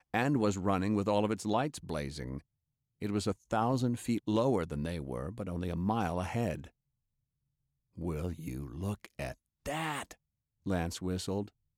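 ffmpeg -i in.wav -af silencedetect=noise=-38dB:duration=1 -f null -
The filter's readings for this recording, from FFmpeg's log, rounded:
silence_start: 6.64
silence_end: 7.99 | silence_duration: 1.34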